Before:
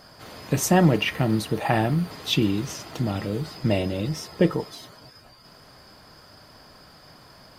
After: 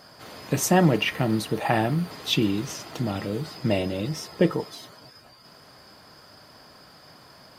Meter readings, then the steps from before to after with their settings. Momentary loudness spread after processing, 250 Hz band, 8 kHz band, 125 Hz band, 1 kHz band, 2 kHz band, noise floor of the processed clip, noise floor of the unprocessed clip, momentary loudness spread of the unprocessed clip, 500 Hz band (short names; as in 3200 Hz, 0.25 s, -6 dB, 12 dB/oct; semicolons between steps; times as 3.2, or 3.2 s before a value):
13 LU, -1.0 dB, 0.0 dB, -2.5 dB, 0.0 dB, 0.0 dB, -51 dBFS, -51 dBFS, 13 LU, -0.5 dB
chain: HPF 120 Hz 6 dB/oct